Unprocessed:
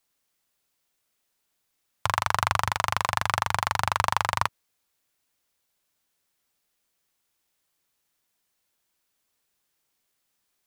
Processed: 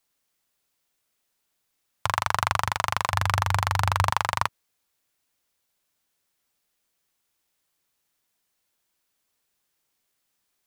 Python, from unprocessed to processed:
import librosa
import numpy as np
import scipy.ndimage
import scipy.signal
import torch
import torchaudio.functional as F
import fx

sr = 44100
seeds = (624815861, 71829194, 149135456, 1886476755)

y = fx.peak_eq(x, sr, hz=91.0, db=13.0, octaves=0.62, at=(3.11, 4.1))